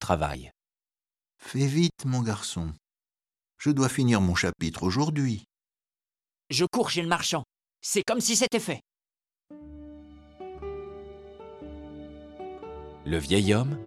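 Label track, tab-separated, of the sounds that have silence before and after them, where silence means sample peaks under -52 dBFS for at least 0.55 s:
1.400000	2.770000	sound
3.590000	5.440000	sound
6.500000	8.800000	sound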